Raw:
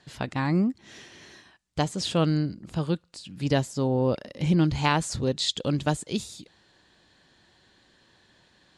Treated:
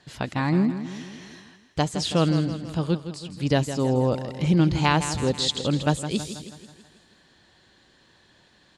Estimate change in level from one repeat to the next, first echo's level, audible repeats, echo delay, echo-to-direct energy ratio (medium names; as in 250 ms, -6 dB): -5.5 dB, -11.0 dB, 5, 162 ms, -9.5 dB